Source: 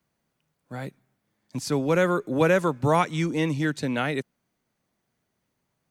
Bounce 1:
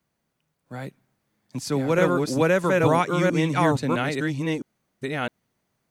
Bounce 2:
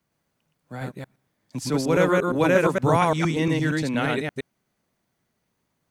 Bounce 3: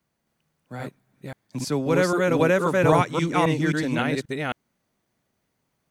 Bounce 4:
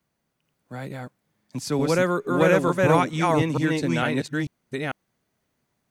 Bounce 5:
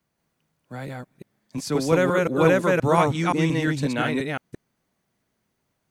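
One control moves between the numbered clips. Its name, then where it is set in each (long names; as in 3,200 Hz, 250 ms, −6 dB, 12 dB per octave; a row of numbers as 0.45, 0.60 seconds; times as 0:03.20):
delay that plays each chunk backwards, delay time: 660, 116, 266, 447, 175 milliseconds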